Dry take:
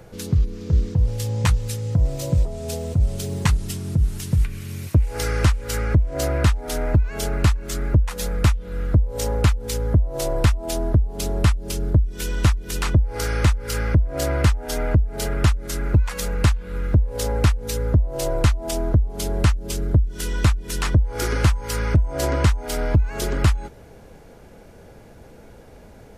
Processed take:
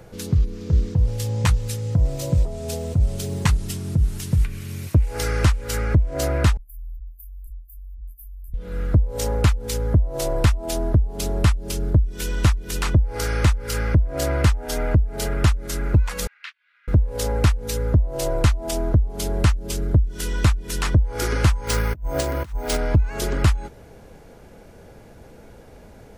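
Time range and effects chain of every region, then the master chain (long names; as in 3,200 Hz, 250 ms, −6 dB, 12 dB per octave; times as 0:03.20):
0:06.57–0:08.54: inverse Chebyshev band-stop filter 120–6,000 Hz, stop band 60 dB + phaser with its sweep stopped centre 370 Hz, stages 6
0:16.27–0:16.88: inverse Chebyshev high-pass filter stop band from 300 Hz, stop band 80 dB + high-frequency loss of the air 320 metres + expander for the loud parts, over −53 dBFS
0:21.67–0:22.77: compressor whose output falls as the input rises −23 dBFS, ratio −0.5 + bad sample-rate conversion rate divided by 3×, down none, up hold
whole clip: no processing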